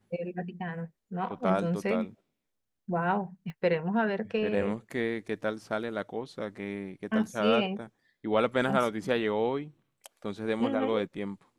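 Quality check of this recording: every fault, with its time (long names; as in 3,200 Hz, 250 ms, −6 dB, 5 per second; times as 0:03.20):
0:03.50: click −30 dBFS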